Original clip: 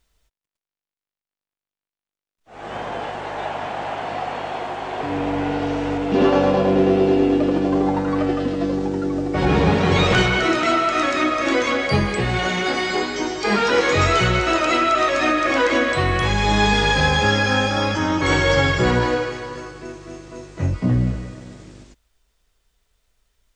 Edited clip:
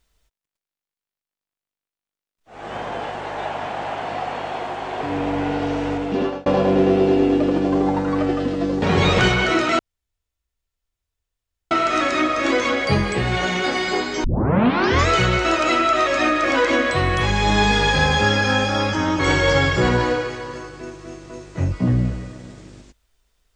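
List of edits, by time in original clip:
5.78–6.46 s: fade out equal-power
8.82–9.76 s: delete
10.73 s: insert room tone 1.92 s
13.26 s: tape start 0.84 s

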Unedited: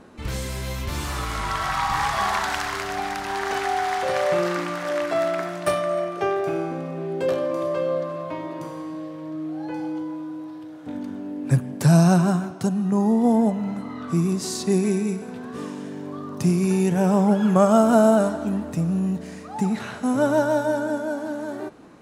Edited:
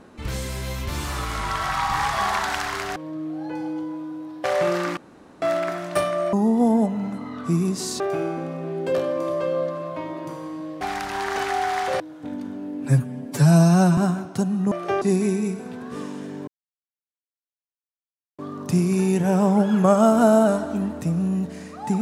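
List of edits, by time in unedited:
2.96–4.15 s: swap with 9.15–10.63 s
4.68–5.13 s: room tone
6.04–6.34 s: swap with 12.97–14.64 s
11.48–12.23 s: stretch 1.5×
16.10 s: insert silence 1.91 s

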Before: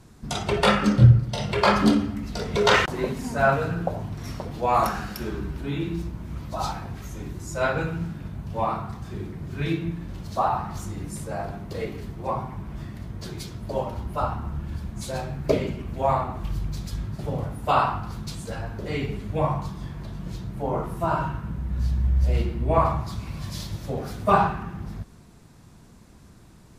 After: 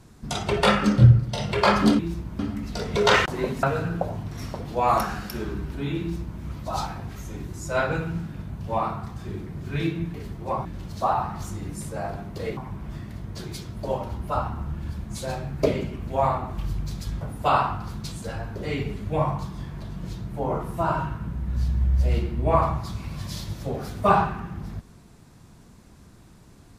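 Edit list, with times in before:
3.23–3.49 s: delete
5.87–6.27 s: copy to 1.99 s
11.92–12.43 s: move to 10.00 s
17.07–17.44 s: delete

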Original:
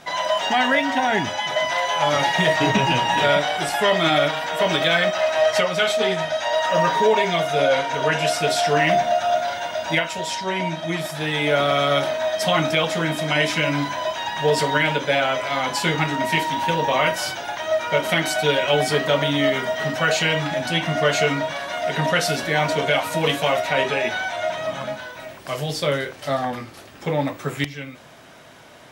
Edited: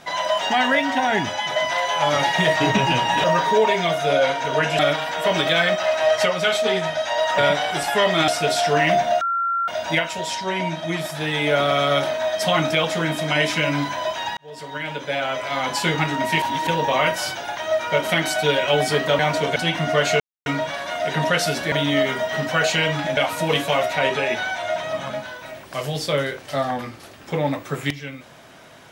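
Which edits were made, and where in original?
3.24–4.14 s: swap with 6.73–8.28 s
9.21–9.68 s: bleep 1.37 kHz -19 dBFS
14.37–15.73 s: fade in
16.42–16.67 s: reverse
19.19–20.64 s: swap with 22.54–22.91 s
21.28 s: insert silence 0.26 s

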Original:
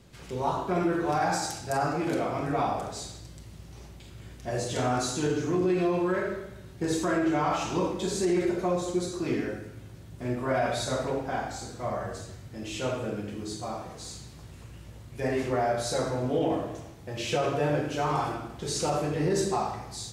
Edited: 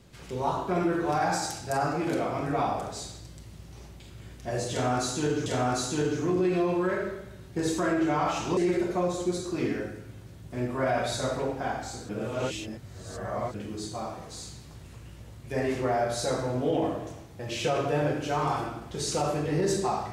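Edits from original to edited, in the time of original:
4.71–5.46 s: loop, 2 plays
7.82–8.25 s: delete
11.77–13.22 s: reverse

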